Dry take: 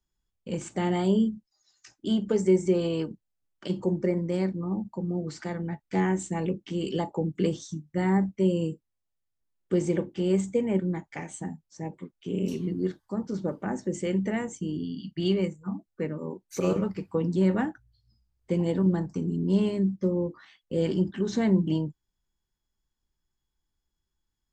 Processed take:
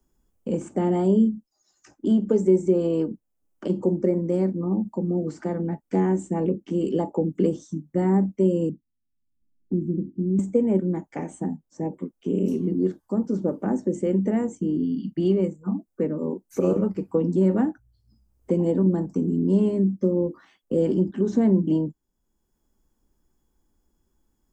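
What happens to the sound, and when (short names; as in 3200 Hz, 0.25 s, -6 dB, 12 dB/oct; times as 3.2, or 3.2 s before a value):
8.69–10.39 inverse Chebyshev low-pass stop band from 720 Hz, stop band 50 dB
whole clip: graphic EQ 125/250/500/2000/4000 Hz -4/+8/+4/-6/-11 dB; three-band squash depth 40%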